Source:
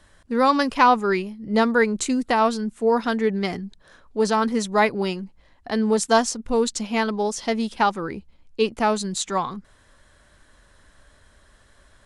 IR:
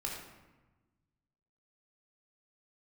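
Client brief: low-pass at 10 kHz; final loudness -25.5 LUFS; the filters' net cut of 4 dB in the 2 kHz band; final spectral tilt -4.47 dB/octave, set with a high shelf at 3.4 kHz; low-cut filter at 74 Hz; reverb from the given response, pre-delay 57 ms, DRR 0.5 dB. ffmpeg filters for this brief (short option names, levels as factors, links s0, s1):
-filter_complex "[0:a]highpass=74,lowpass=10000,equalizer=f=2000:t=o:g=-4,highshelf=f=3400:g=-5,asplit=2[s0][s1];[1:a]atrim=start_sample=2205,adelay=57[s2];[s1][s2]afir=irnorm=-1:irlink=0,volume=0.794[s3];[s0][s3]amix=inputs=2:normalize=0,volume=0.531"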